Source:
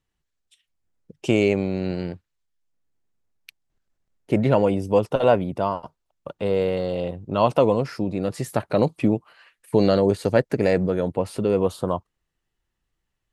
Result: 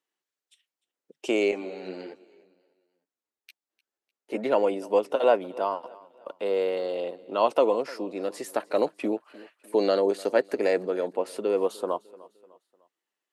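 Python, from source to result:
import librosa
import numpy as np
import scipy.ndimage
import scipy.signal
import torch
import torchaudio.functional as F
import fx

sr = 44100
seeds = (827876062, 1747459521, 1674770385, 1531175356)

y = scipy.signal.sosfilt(scipy.signal.butter(4, 300.0, 'highpass', fs=sr, output='sos'), x)
y = fx.echo_feedback(y, sr, ms=301, feedback_pct=43, wet_db=-21.5)
y = fx.ensemble(y, sr, at=(1.51, 4.44))
y = F.gain(torch.from_numpy(y), -3.0).numpy()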